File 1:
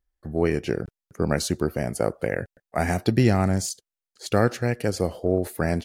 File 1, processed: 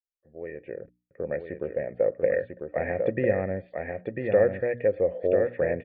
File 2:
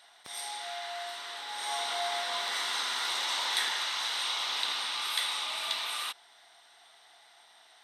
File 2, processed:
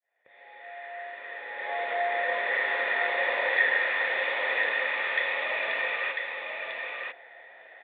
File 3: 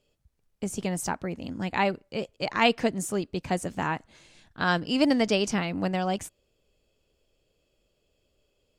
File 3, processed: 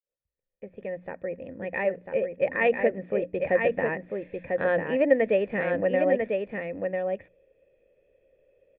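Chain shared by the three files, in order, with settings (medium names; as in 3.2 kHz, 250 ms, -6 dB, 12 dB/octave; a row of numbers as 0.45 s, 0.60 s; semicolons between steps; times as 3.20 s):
fade-in on the opening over 2.87 s; hum notches 60/120/180/240/300 Hz; in parallel at +2 dB: compression, threshold -32 dBFS; on the sum: cascade formant filter e; delay 996 ms -4.5 dB; normalise loudness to -27 LUFS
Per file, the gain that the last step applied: +6.0 dB, +17.0 dB, +10.0 dB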